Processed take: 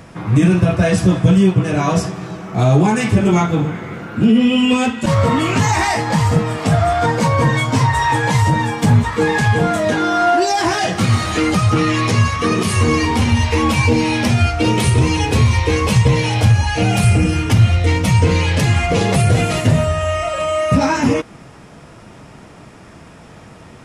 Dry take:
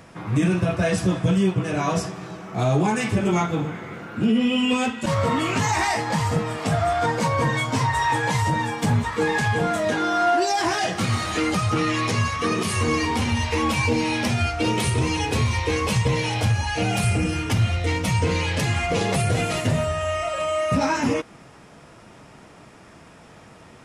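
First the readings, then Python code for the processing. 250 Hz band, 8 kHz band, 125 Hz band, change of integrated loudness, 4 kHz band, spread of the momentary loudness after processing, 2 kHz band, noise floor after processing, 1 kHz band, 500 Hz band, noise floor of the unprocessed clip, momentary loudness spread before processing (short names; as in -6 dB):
+8.0 dB, +5.0 dB, +9.5 dB, +7.0 dB, +5.0 dB, 4 LU, +5.0 dB, -40 dBFS, +5.5 dB, +6.0 dB, -47 dBFS, 4 LU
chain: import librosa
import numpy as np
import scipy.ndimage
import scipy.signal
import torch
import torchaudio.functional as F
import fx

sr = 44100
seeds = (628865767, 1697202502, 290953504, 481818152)

y = fx.low_shelf(x, sr, hz=240.0, db=5.5)
y = y * 10.0 ** (5.0 / 20.0)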